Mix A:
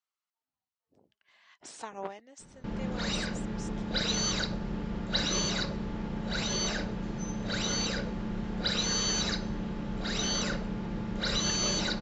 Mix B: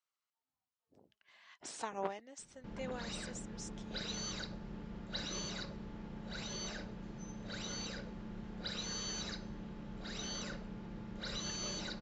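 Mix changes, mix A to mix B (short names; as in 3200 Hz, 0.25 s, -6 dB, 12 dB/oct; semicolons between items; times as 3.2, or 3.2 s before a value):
background -9.5 dB; reverb: off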